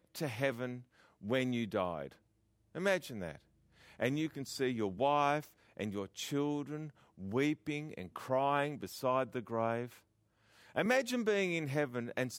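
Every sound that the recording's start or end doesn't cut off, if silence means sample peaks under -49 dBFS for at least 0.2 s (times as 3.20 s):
1.23–2.12 s
2.75–3.36 s
3.91–5.47 s
5.77–6.90 s
7.18–9.97 s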